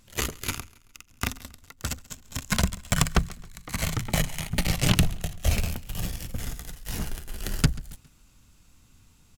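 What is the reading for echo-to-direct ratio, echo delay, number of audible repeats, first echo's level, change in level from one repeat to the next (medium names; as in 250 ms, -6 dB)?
-20.5 dB, 136 ms, 2, -21.5 dB, -7.0 dB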